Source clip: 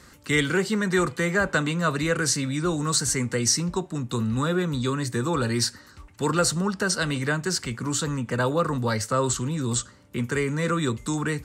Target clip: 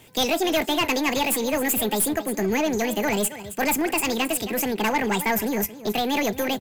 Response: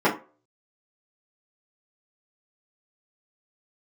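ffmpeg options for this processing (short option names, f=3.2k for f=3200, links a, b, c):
-filter_complex "[0:a]aecho=1:1:468:0.2,asplit=2[a][b];[b]aeval=exprs='sgn(val(0))*max(abs(val(0))-0.01,0)':c=same,volume=-4.5dB[c];[a][c]amix=inputs=2:normalize=0,aeval=exprs='(tanh(6.31*val(0)+0.25)-tanh(0.25))/6.31':c=same,asetrate=76440,aresample=44100"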